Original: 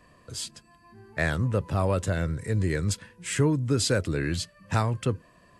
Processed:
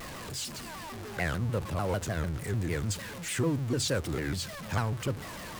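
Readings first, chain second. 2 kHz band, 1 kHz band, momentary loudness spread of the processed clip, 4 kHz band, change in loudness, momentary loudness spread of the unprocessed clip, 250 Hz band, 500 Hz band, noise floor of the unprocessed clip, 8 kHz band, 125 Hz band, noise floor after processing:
-3.5 dB, -3.5 dB, 9 LU, -2.0 dB, -5.0 dB, 11 LU, -4.5 dB, -5.0 dB, -59 dBFS, -2.5 dB, -5.0 dB, -42 dBFS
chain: jump at every zero crossing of -29.5 dBFS; de-hum 46.45 Hz, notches 3; vibrato with a chosen wave saw down 6.7 Hz, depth 250 cents; trim -6.5 dB

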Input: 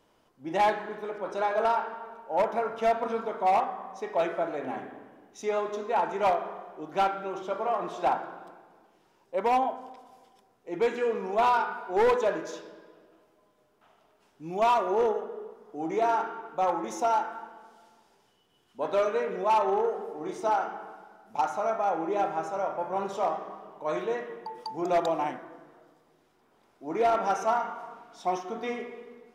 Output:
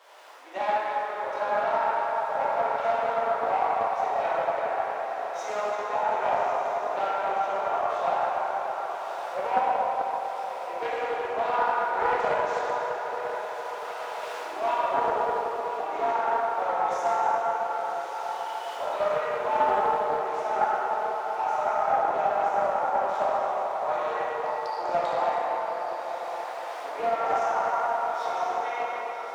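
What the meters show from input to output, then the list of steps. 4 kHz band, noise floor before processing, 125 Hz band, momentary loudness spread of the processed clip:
+1.5 dB, -66 dBFS, no reading, 7 LU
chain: jump at every zero crossing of -45 dBFS; recorder AGC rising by 6.3 dB/s; high-pass 580 Hz 24 dB/octave; treble shelf 5.1 kHz -11.5 dB; peak limiter -21.5 dBFS, peak gain reduction 5.5 dB; on a send: echo that smears into a reverb 1131 ms, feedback 49%, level -9 dB; on the sum: plate-style reverb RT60 4 s, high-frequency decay 0.55×, DRR -8.5 dB; loudspeaker Doppler distortion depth 0.19 ms; trim -4 dB

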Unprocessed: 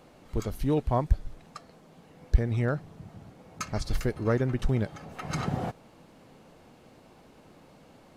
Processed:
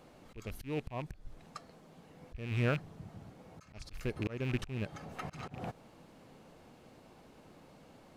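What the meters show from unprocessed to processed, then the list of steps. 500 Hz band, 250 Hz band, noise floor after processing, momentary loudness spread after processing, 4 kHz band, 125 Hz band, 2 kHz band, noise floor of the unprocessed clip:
-9.5 dB, -9.0 dB, -59 dBFS, 23 LU, -5.0 dB, -9.0 dB, -3.0 dB, -56 dBFS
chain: rattle on loud lows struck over -28 dBFS, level -25 dBFS; slow attack 317 ms; trim -3 dB

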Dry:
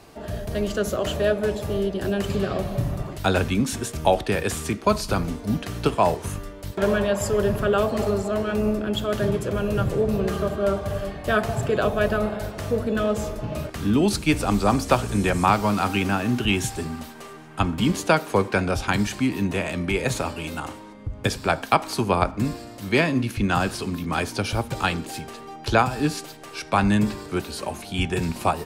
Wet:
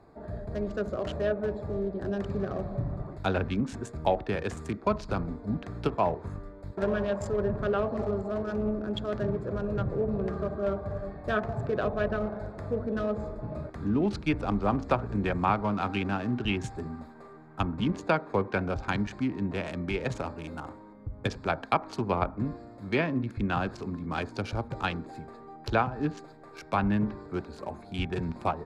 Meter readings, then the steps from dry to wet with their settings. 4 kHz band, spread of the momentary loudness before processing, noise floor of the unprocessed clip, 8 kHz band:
-11.5 dB, 10 LU, -41 dBFS, under -15 dB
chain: local Wiener filter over 15 samples; low-pass that closes with the level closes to 2.7 kHz, closed at -16 dBFS; trim -6.5 dB

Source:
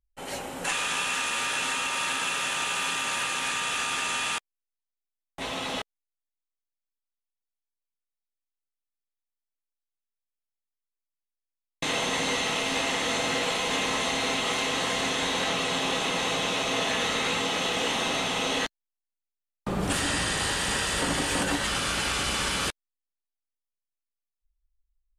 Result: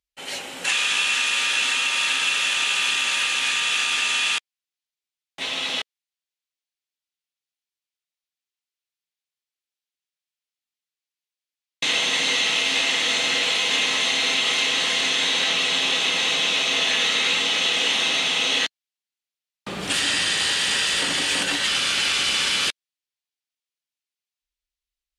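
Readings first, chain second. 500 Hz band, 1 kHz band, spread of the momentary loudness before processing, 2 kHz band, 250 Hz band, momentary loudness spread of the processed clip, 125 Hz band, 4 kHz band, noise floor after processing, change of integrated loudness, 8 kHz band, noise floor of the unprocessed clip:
-2.5 dB, -1.5 dB, 6 LU, +7.0 dB, -3.5 dB, 6 LU, -7.0 dB, +9.5 dB, under -85 dBFS, +7.0 dB, +4.5 dB, under -85 dBFS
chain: frequency weighting D; trim -2 dB

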